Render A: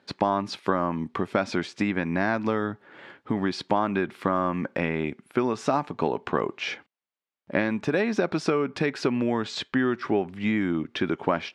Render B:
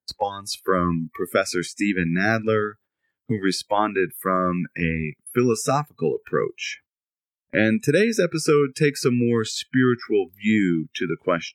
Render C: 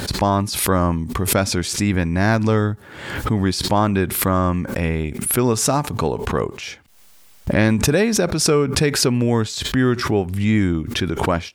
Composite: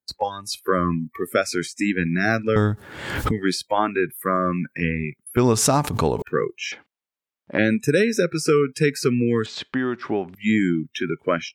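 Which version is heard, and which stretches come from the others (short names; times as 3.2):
B
2.56–3.31 from C
5.37–6.22 from C
6.72–7.58 from A
9.46–10.35 from A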